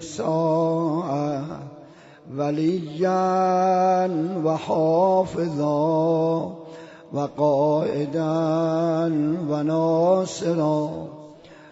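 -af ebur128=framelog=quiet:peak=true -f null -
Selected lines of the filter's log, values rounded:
Integrated loudness:
  I:         -22.2 LUFS
  Threshold: -32.8 LUFS
Loudness range:
  LRA:         2.7 LU
  Threshold: -42.5 LUFS
  LRA low:   -23.8 LUFS
  LRA high:  -21.0 LUFS
True peak:
  Peak:       -8.4 dBFS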